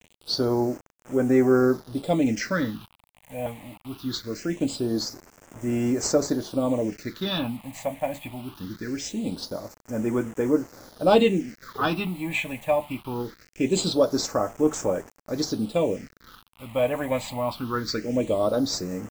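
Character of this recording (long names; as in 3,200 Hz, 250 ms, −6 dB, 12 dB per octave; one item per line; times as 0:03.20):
a quantiser's noise floor 8 bits, dither none
phaser sweep stages 6, 0.22 Hz, lowest notch 360–4,100 Hz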